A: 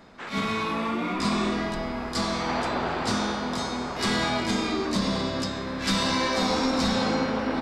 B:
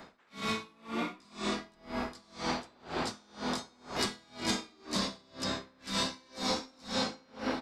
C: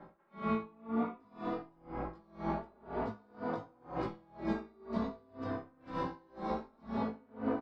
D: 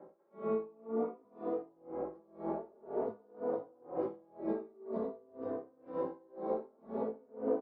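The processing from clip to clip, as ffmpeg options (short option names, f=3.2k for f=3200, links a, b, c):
-filter_complex "[0:a]lowshelf=f=220:g=-7,acrossover=split=430|3600[a][b][c];[a]acompressor=threshold=-36dB:ratio=4[d];[b]acompressor=threshold=-37dB:ratio=4[e];[c]acompressor=threshold=-35dB:ratio=4[f];[d][e][f]amix=inputs=3:normalize=0,aeval=exprs='val(0)*pow(10,-32*(0.5-0.5*cos(2*PI*2*n/s))/20)':c=same,volume=3.5dB"
-filter_complex "[0:a]lowpass=1k,asplit=2[a][b];[b]adelay=18,volume=-4.5dB[c];[a][c]amix=inputs=2:normalize=0,asplit=2[d][e];[e]adelay=3.3,afreqshift=0.48[f];[d][f]amix=inputs=2:normalize=1,volume=2dB"
-af "bandpass=f=460:t=q:w=2.8:csg=0,volume=7dB"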